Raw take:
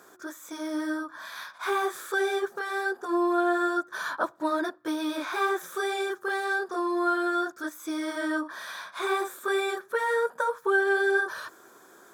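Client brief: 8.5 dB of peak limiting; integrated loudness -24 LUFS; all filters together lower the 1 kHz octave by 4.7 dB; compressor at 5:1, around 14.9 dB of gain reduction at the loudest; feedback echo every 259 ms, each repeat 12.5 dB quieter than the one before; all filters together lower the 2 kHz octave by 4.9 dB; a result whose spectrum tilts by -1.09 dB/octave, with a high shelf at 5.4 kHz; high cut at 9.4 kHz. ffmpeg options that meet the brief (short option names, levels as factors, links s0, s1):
-af "lowpass=9400,equalizer=f=1000:t=o:g=-5,equalizer=f=2000:t=o:g=-5,highshelf=f=5400:g=4.5,acompressor=threshold=0.00891:ratio=5,alimiter=level_in=4.73:limit=0.0631:level=0:latency=1,volume=0.211,aecho=1:1:259|518|777:0.237|0.0569|0.0137,volume=11.9"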